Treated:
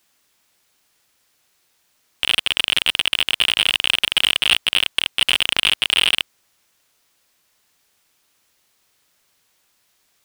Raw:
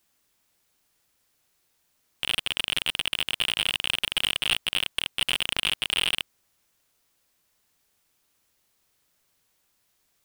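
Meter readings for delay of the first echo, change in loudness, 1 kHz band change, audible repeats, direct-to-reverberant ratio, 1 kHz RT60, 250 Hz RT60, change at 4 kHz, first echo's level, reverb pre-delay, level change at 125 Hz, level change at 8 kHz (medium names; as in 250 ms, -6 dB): no echo, +8.5 dB, +7.5 dB, no echo, no reverb, no reverb, no reverb, +8.5 dB, no echo, no reverb, +3.0 dB, +6.5 dB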